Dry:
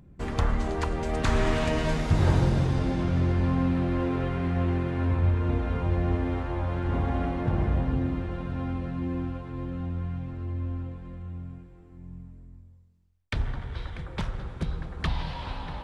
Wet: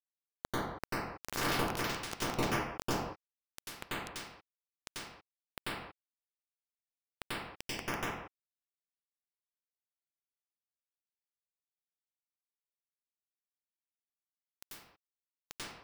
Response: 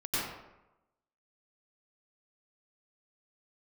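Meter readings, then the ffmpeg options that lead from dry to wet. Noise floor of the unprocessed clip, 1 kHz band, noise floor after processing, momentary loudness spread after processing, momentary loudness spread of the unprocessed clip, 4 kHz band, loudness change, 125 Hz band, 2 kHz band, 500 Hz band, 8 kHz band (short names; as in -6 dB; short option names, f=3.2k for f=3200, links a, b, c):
-51 dBFS, -6.5 dB, under -85 dBFS, 19 LU, 13 LU, -2.0 dB, -9.5 dB, -22.0 dB, -4.0 dB, -11.5 dB, n/a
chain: -filter_complex "[0:a]bandreject=f=50:t=h:w=6,bandreject=f=100:t=h:w=6,bandreject=f=150:t=h:w=6,bandreject=f=200:t=h:w=6,bandreject=f=250:t=h:w=6,bandreject=f=300:t=h:w=6,bandreject=f=350:t=h:w=6,bandreject=f=400:t=h:w=6,adynamicequalizer=threshold=0.00631:dfrequency=170:dqfactor=3.6:tfrequency=170:tqfactor=3.6:attack=5:release=100:ratio=0.375:range=2:mode=cutabove:tftype=bell,areverse,acompressor=threshold=-39dB:ratio=4,areverse,acrusher=bits=4:mix=0:aa=0.000001[a];[1:a]atrim=start_sample=2205,afade=t=out:st=0.38:d=0.01,atrim=end_sample=17199[b];[a][b]afir=irnorm=-1:irlink=0,volume=7dB"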